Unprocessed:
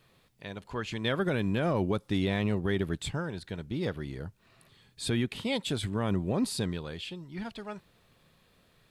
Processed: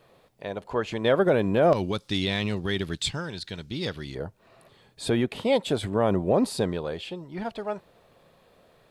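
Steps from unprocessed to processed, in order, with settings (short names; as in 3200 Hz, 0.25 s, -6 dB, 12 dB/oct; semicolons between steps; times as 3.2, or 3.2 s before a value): bell 600 Hz +13 dB 1.8 oct, from 1.73 s 4700 Hz, from 4.15 s 610 Hz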